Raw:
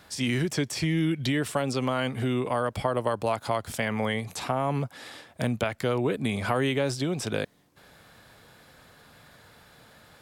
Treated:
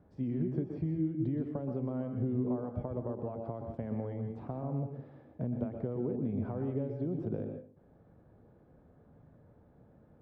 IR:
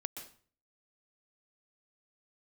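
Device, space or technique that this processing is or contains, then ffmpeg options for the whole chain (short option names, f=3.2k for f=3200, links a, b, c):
television next door: -filter_complex "[0:a]acompressor=threshold=-27dB:ratio=6,lowpass=440[a];[1:a]atrim=start_sample=2205[b];[a][b]afir=irnorm=-1:irlink=0"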